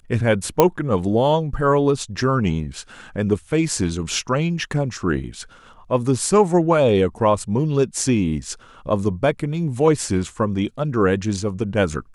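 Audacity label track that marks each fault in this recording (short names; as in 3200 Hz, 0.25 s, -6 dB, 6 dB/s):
0.600000	0.600000	pop 0 dBFS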